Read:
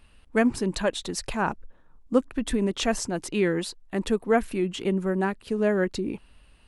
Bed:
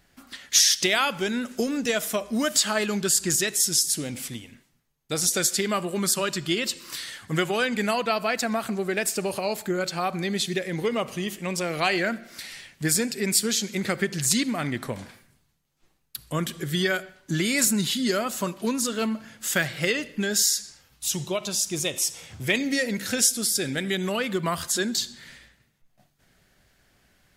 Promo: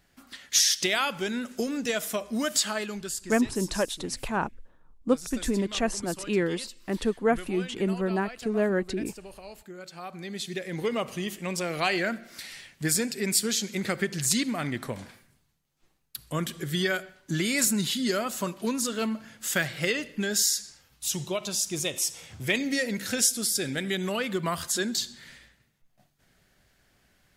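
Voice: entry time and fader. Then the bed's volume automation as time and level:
2.95 s, −2.0 dB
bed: 0:02.62 −3.5 dB
0:03.42 −17 dB
0:09.72 −17 dB
0:10.87 −2.5 dB

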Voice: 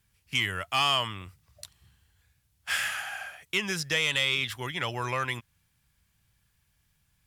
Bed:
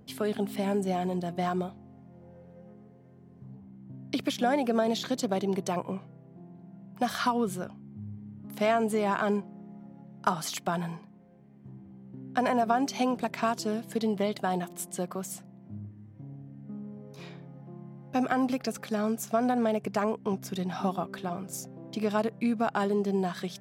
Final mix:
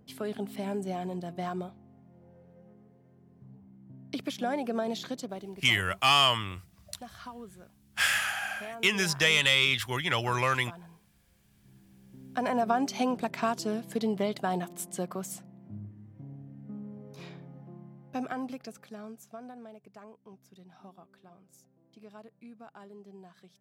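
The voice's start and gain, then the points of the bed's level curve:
5.30 s, +3.0 dB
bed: 0:05.07 −5 dB
0:05.66 −17 dB
0:11.26 −17 dB
0:12.65 −1 dB
0:17.57 −1 dB
0:19.79 −22 dB

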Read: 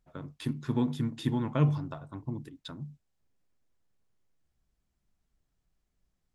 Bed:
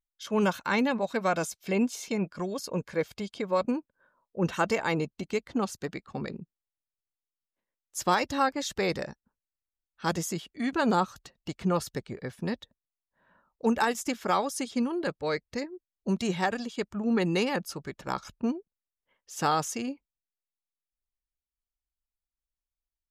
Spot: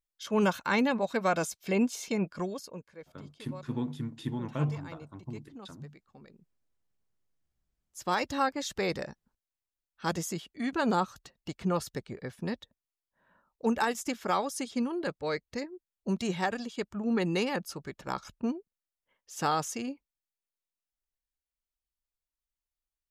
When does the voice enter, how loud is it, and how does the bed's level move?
3.00 s, −5.0 dB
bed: 0:02.44 −0.5 dB
0:02.95 −19 dB
0:07.77 −19 dB
0:08.18 −2.5 dB

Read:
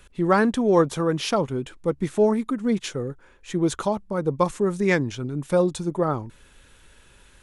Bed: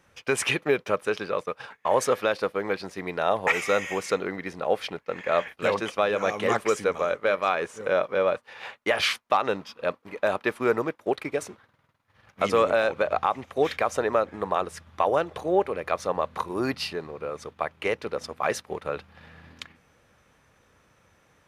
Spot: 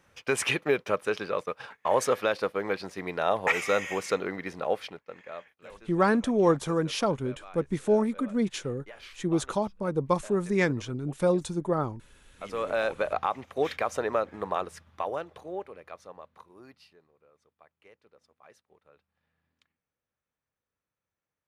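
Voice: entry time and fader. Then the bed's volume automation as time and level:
5.70 s, −4.0 dB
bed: 0:04.64 −2 dB
0:05.63 −23.5 dB
0:12.19 −23.5 dB
0:12.81 −4 dB
0:14.56 −4 dB
0:17.21 −30 dB

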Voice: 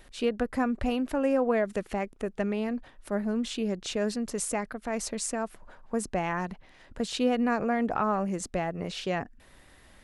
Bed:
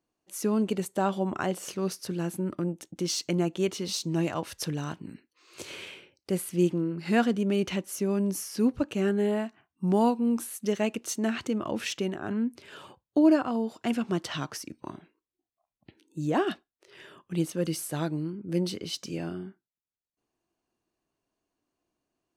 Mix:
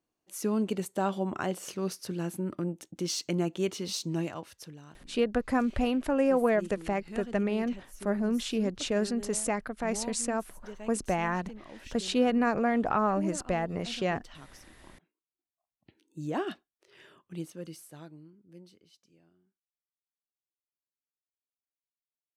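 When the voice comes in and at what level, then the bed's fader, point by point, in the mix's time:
4.95 s, +0.5 dB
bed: 0:04.11 −2.5 dB
0:04.80 −17 dB
0:15.14 −17 dB
0:15.94 −6 dB
0:17.05 −6 dB
0:19.40 −33 dB

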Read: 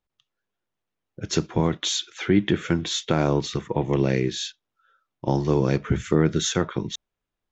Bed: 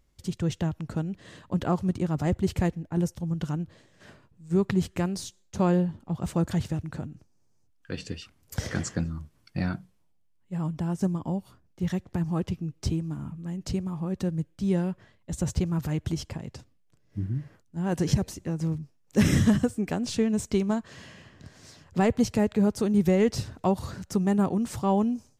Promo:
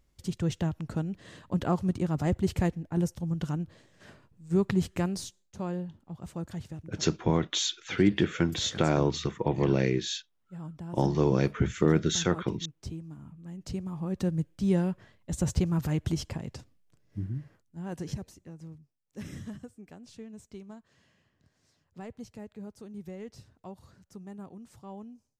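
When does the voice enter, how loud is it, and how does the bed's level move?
5.70 s, −3.5 dB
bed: 0:05.24 −1.5 dB
0:05.54 −11 dB
0:13.25 −11 dB
0:14.28 0 dB
0:16.84 0 dB
0:19.00 −20 dB

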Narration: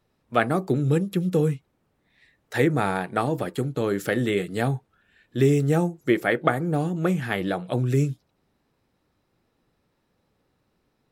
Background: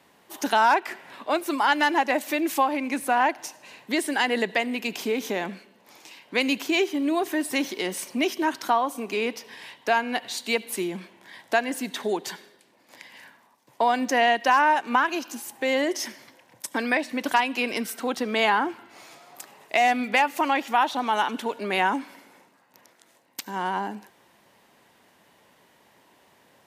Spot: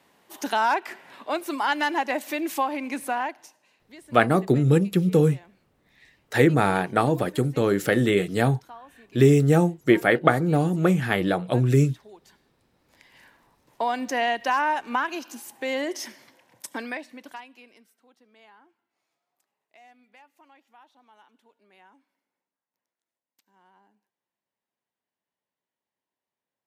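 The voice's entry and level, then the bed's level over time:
3.80 s, +3.0 dB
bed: 0:03.06 −3 dB
0:03.86 −22 dB
0:12.34 −22 dB
0:13.36 −4 dB
0:16.69 −4 dB
0:17.99 −33 dB

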